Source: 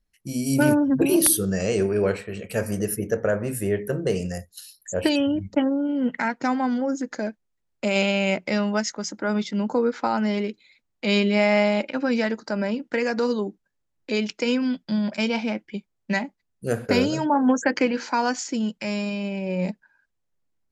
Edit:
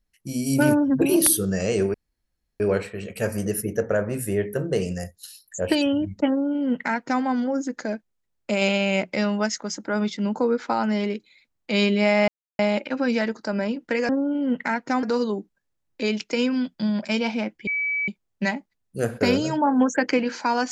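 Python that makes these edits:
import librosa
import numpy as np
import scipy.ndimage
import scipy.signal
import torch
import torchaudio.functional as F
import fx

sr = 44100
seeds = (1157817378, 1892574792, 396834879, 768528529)

y = fx.edit(x, sr, fx.insert_room_tone(at_s=1.94, length_s=0.66),
    fx.duplicate(start_s=5.63, length_s=0.94, to_s=13.12),
    fx.insert_silence(at_s=11.62, length_s=0.31),
    fx.insert_tone(at_s=15.76, length_s=0.41, hz=2290.0, db=-22.0), tone=tone)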